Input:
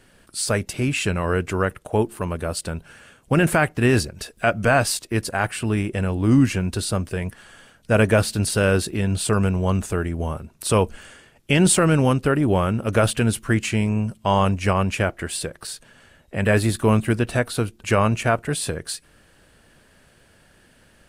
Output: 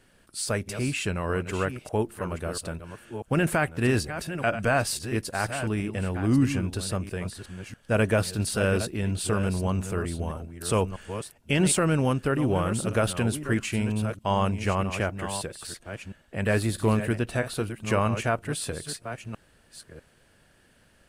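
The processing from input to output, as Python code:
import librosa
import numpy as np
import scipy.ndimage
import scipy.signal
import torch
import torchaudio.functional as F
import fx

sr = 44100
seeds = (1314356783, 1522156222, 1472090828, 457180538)

y = fx.reverse_delay(x, sr, ms=645, wet_db=-10)
y = y * librosa.db_to_amplitude(-6.0)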